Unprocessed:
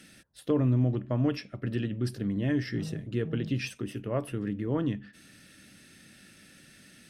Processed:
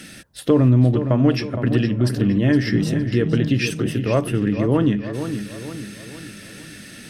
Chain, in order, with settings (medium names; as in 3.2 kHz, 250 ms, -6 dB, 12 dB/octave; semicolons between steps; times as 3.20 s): in parallel at -0.5 dB: compression, threshold -34 dBFS, peak gain reduction 12.5 dB; on the sum: filtered feedback delay 464 ms, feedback 48%, low-pass 4.7 kHz, level -9 dB; trim +8.5 dB